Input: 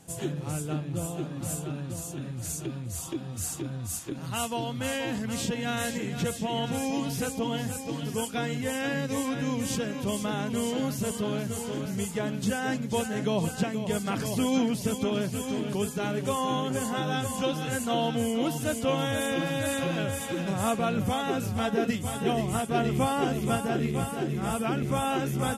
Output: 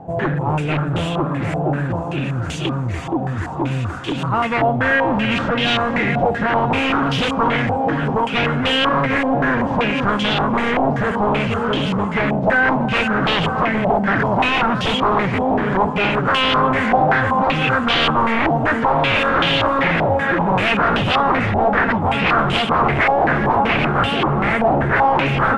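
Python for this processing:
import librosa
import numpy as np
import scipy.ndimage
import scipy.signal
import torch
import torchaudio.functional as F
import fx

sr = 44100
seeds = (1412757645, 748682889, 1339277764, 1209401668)

p1 = fx.fold_sine(x, sr, drive_db=15, ceiling_db=-12.5)
p2 = p1 + fx.echo_thinned(p1, sr, ms=288, feedback_pct=63, hz=420.0, wet_db=-9, dry=0)
p3 = fx.filter_held_lowpass(p2, sr, hz=5.2, low_hz=760.0, high_hz=3100.0)
y = p3 * librosa.db_to_amplitude(-4.0)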